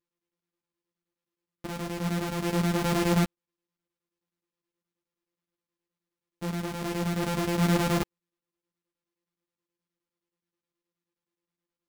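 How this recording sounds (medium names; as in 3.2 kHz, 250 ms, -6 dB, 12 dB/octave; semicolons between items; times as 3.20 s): a buzz of ramps at a fixed pitch in blocks of 256 samples; chopped level 9.5 Hz, depth 65%, duty 75%; a shimmering, thickened sound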